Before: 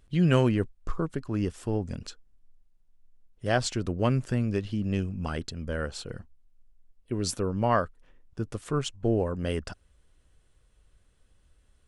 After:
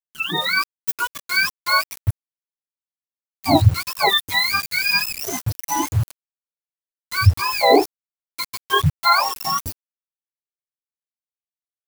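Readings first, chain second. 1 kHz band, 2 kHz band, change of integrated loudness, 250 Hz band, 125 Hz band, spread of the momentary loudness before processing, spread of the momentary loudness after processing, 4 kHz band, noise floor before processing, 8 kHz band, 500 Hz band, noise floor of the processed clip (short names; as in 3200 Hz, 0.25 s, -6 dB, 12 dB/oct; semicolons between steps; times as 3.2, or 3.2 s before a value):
+14.0 dB, +17.5 dB, +10.0 dB, +1.0 dB, +6.5 dB, 13 LU, 12 LU, +18.0 dB, -65 dBFS, +11.5 dB, +5.0 dB, under -85 dBFS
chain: spectrum mirrored in octaves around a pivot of 690 Hz; high shelf 3400 Hz -5.5 dB; spectral noise reduction 17 dB; sample gate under -41.5 dBFS; AGC gain up to 13 dB; high shelf 9300 Hz +11 dB; gain +1.5 dB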